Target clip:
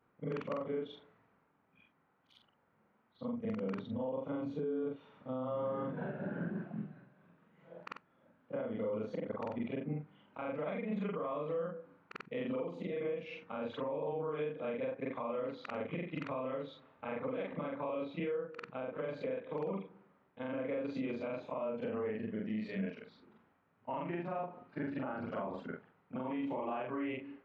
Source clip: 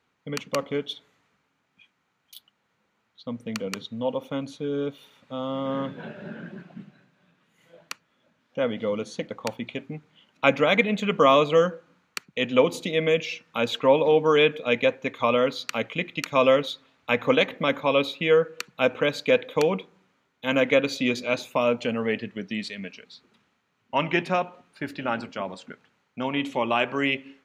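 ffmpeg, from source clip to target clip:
-af "afftfilt=real='re':imag='-im':win_size=4096:overlap=0.75,lowpass=1300,acompressor=threshold=0.02:ratio=6,alimiter=level_in=3.35:limit=0.0631:level=0:latency=1:release=202,volume=0.299,volume=1.88"

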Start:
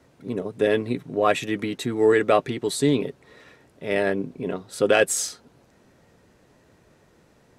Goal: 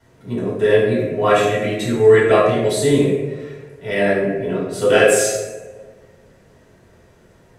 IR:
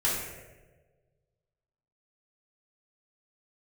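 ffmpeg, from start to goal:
-filter_complex "[1:a]atrim=start_sample=2205[s0];[0:a][s0]afir=irnorm=-1:irlink=0,volume=0.631"

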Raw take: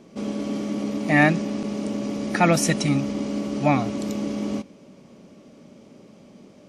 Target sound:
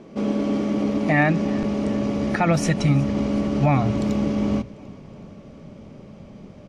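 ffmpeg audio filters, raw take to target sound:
-af "aemphasis=mode=reproduction:type=75kf,bandreject=f=60:t=h:w=6,bandreject=f=120:t=h:w=6,bandreject=f=180:t=h:w=6,bandreject=f=240:t=h:w=6,bandreject=f=300:t=h:w=6,asubboost=boost=6.5:cutoff=110,alimiter=limit=0.158:level=0:latency=1:release=205,aecho=1:1:372|744|1116|1488:0.075|0.0427|0.0244|0.0139,volume=2.11"

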